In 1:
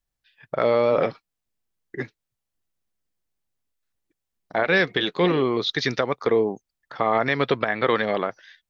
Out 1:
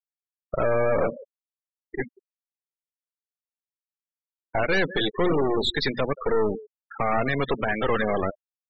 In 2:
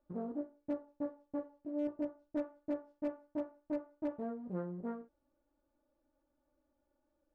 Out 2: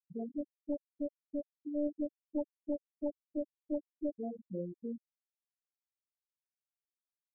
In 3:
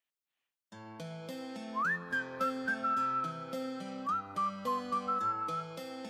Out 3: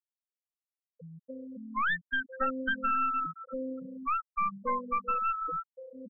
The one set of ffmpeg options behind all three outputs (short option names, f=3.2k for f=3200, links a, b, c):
-filter_complex "[0:a]bandreject=f=60:t=h:w=6,bandreject=f=120:t=h:w=6,bandreject=f=180:t=h:w=6,bandreject=f=240:t=h:w=6,aecho=1:1:180:0.0944,acrossover=split=110[a][b];[a]aeval=exprs='abs(val(0))':c=same[c];[c][b]amix=inputs=2:normalize=0,aeval=exprs='(tanh(22.4*val(0)+0.75)-tanh(0.75))/22.4':c=same,afftfilt=real='re*gte(hypot(re,im),0.0316)':imag='im*gte(hypot(re,im),0.0316)':win_size=1024:overlap=0.75,volume=7.5dB"